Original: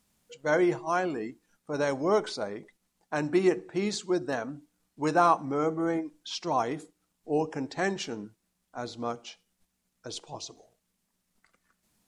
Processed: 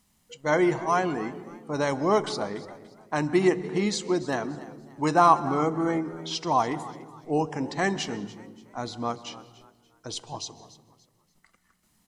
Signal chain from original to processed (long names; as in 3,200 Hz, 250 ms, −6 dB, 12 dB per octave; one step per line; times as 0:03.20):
comb filter 1 ms, depth 32%
echo with shifted repeats 289 ms, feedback 33%, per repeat +74 Hz, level −18 dB
on a send at −17 dB: convolution reverb RT60 1.2 s, pre-delay 132 ms
on the sum: level +3.5 dB